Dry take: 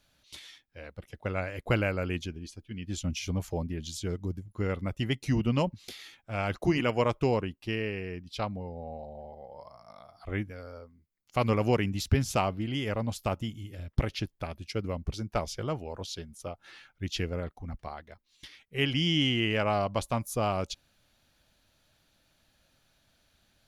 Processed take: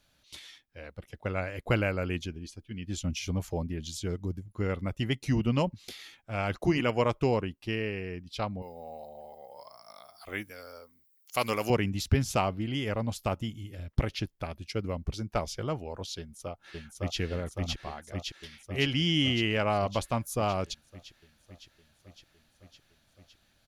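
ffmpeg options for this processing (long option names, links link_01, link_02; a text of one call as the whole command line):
ffmpeg -i in.wav -filter_complex "[0:a]asettb=1/sr,asplit=3[link_01][link_02][link_03];[link_01]atrim=end=8.624[link_04];[link_02]atrim=start=8.62:end=11.7,asetpts=PTS-STARTPTS,afade=type=in:duration=0.004:curve=qsin,afade=type=out:start_time=3.076:duration=0.004:curve=qsin,aemphasis=mode=production:type=riaa[link_05];[link_03]atrim=start=11.696[link_06];[link_04][link_05]acrossfade=duration=0.004:curve1=hsin:curve2=qsin[link_07];[link_07][link_06]acrossfade=duration=0.004:curve1=qsin:curve2=hsin,asplit=2[link_08][link_09];[link_09]afade=type=in:start_time=16.18:duration=0.01,afade=type=out:start_time=17.19:duration=0.01,aecho=0:1:560|1120|1680|2240|2800|3360|3920|4480|5040|5600|6160|6720:0.944061|0.708046|0.531034|0.398276|0.298707|0.22403|0.168023|0.126017|0.0945127|0.0708845|0.0531634|0.0398725[link_10];[link_08][link_10]amix=inputs=2:normalize=0" out.wav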